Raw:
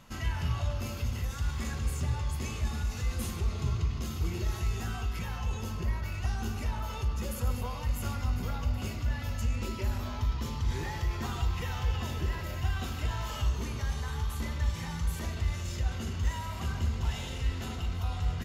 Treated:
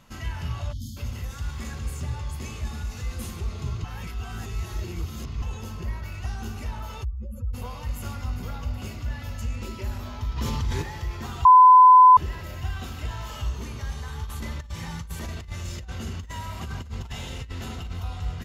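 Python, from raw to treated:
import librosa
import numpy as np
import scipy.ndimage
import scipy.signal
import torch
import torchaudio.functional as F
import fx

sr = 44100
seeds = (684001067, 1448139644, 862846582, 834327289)

y = fx.spec_erase(x, sr, start_s=0.72, length_s=0.25, low_hz=310.0, high_hz=3000.0)
y = fx.spec_expand(y, sr, power=2.2, at=(7.03, 7.53), fade=0.02)
y = fx.env_flatten(y, sr, amount_pct=70, at=(10.36, 10.81), fade=0.02)
y = fx.over_compress(y, sr, threshold_db=-32.0, ratio=-0.5, at=(14.24, 18.0))
y = fx.edit(y, sr, fx.reverse_span(start_s=3.84, length_s=1.58),
    fx.bleep(start_s=11.45, length_s=0.72, hz=1010.0, db=-8.0), tone=tone)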